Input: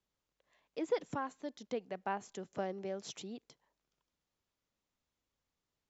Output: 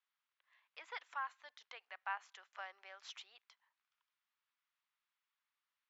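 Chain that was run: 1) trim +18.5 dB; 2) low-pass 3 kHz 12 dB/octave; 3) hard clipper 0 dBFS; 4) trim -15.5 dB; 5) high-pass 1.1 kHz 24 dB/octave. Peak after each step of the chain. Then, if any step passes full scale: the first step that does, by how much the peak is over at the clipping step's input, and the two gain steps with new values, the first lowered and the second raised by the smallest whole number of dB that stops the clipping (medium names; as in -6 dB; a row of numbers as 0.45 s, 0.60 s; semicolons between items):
-4.0 dBFS, -4.0 dBFS, -4.0 dBFS, -19.5 dBFS, -28.0 dBFS; nothing clips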